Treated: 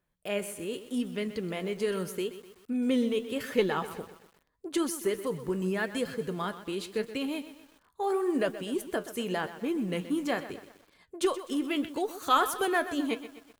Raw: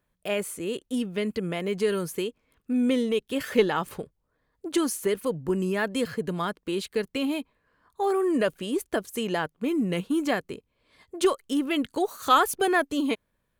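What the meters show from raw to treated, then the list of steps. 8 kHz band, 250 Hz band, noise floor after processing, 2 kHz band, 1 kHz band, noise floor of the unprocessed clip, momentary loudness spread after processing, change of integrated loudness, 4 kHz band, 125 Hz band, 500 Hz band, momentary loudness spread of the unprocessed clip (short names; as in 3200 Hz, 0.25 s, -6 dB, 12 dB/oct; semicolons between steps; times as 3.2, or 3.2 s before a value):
-4.0 dB, -4.0 dB, -69 dBFS, -4.0 dB, -4.0 dB, -76 dBFS, 9 LU, -4.0 dB, -4.0 dB, -4.5 dB, -4.0 dB, 9 LU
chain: flange 0.82 Hz, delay 5.1 ms, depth 8.1 ms, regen +69%; lo-fi delay 0.126 s, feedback 55%, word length 8-bit, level -13 dB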